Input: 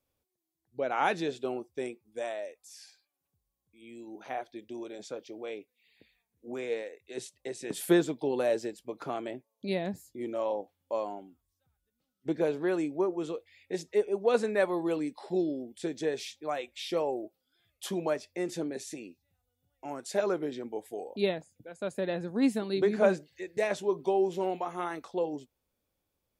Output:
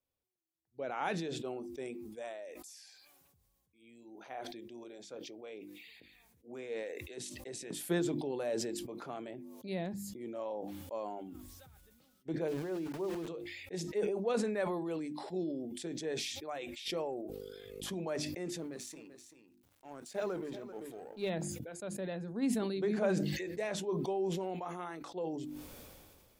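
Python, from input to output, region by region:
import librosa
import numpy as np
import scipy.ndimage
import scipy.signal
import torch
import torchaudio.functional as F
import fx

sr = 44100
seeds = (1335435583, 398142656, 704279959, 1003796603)

y = fx.chain(x, sr, fx.lowpass(hz=1000.0, slope=6),
    fx.hum_notches(base_hz=60, count=6),
    fx.sample_gate(floor_db=-41.0), at=(12.48, 13.28))
y = fx.dmg_buzz(y, sr, base_hz=50.0, harmonics=10, level_db=-63.0, tilt_db=0, odd_only=False, at=(16.85, 17.92), fade=0.02)
y = fx.pre_swell(y, sr, db_per_s=33.0, at=(16.85, 17.92), fade=0.02)
y = fx.chain(y, sr, fx.law_mismatch(coded='A'),
    fx.echo_single(ms=388, db=-15.5), at=(18.58, 21.3))
y = fx.hum_notches(y, sr, base_hz=50, count=7)
y = fx.dynamic_eq(y, sr, hz=170.0, q=1.4, threshold_db=-48.0, ratio=4.0, max_db=5)
y = fx.sustainer(y, sr, db_per_s=28.0)
y = F.gain(torch.from_numpy(y), -9.0).numpy()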